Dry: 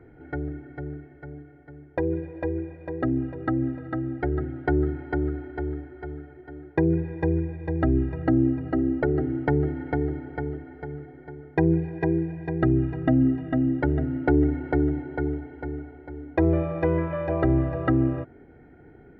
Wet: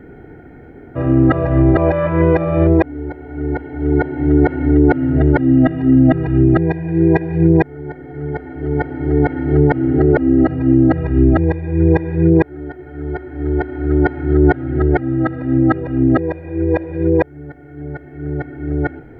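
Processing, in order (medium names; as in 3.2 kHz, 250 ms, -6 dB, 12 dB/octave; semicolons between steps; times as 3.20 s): reverse the whole clip; loudness maximiser +14.5 dB; trim -2.5 dB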